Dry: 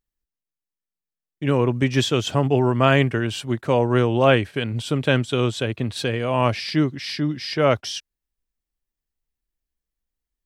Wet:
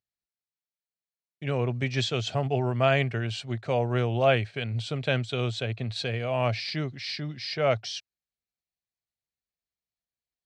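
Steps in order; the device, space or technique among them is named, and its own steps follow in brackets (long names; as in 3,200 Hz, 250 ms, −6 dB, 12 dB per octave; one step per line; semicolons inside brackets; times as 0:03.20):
car door speaker (loudspeaker in its box 96–7,700 Hz, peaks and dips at 110 Hz +8 dB, 300 Hz −9 dB, 690 Hz +7 dB, 1,000 Hz −5 dB, 2,300 Hz +5 dB, 4,200 Hz +8 dB)
level −8 dB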